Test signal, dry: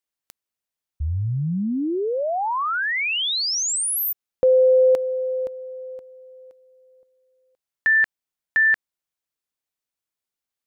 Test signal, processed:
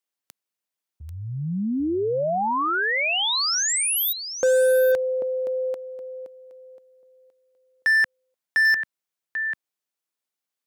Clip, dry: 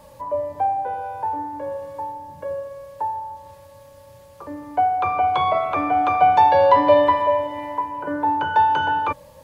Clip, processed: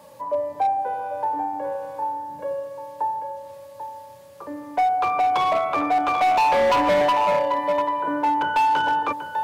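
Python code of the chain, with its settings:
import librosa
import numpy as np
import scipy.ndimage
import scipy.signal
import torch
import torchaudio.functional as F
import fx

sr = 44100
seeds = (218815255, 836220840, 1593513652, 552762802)

p1 = scipy.signal.sosfilt(scipy.signal.butter(2, 170.0, 'highpass', fs=sr, output='sos'), x)
p2 = p1 + fx.echo_single(p1, sr, ms=791, db=-9.5, dry=0)
y = np.clip(p2, -10.0 ** (-16.0 / 20.0), 10.0 ** (-16.0 / 20.0))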